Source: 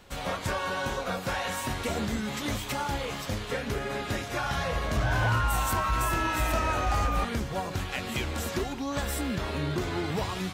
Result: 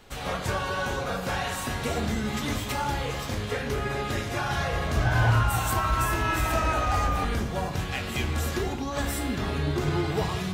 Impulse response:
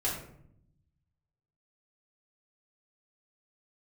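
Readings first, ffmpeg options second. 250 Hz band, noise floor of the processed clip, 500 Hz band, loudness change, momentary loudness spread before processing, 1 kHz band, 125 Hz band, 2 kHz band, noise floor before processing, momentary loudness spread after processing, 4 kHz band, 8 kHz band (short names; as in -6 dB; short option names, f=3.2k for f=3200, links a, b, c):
+2.0 dB, -33 dBFS, +2.0 dB, +2.5 dB, 6 LU, +1.5 dB, +4.5 dB, +2.0 dB, -38 dBFS, 5 LU, +1.0 dB, +1.0 dB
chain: -filter_complex "[0:a]asplit=2[a][b];[1:a]atrim=start_sample=2205[c];[b][c]afir=irnorm=-1:irlink=0,volume=-6.5dB[d];[a][d]amix=inputs=2:normalize=0,volume=-2.5dB"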